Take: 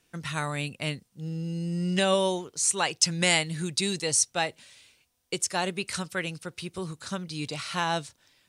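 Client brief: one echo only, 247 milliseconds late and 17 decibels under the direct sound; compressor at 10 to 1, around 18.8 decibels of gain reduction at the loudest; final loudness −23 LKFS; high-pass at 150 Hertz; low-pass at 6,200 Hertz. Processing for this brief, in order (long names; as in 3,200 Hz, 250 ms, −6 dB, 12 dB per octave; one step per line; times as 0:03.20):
high-pass filter 150 Hz
low-pass filter 6,200 Hz
downward compressor 10 to 1, threshold −38 dBFS
single-tap delay 247 ms −17 dB
level +19 dB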